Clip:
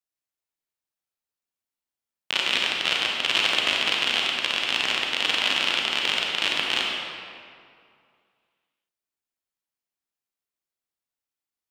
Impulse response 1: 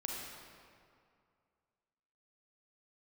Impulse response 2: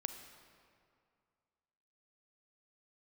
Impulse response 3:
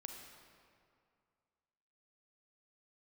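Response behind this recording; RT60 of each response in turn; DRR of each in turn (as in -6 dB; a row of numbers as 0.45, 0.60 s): 1; 2.3, 2.3, 2.3 s; -2.0, 7.5, 2.5 dB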